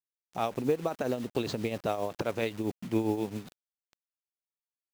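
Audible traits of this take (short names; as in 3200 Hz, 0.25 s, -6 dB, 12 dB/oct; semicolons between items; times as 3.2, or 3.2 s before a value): a quantiser's noise floor 8-bit, dither none; tremolo triangle 7.5 Hz, depth 65%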